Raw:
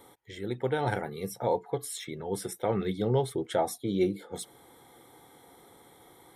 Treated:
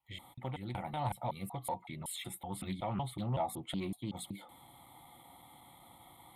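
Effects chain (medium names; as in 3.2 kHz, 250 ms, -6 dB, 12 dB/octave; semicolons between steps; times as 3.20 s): slices played last to first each 187 ms, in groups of 2; in parallel at +3 dB: compression, threshold -36 dBFS, peak gain reduction 14 dB; on the sum: Chebyshev shaper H 5 -31 dB, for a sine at -12 dBFS; static phaser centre 1.6 kHz, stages 6; loudspeaker Doppler distortion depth 0.18 ms; trim -7 dB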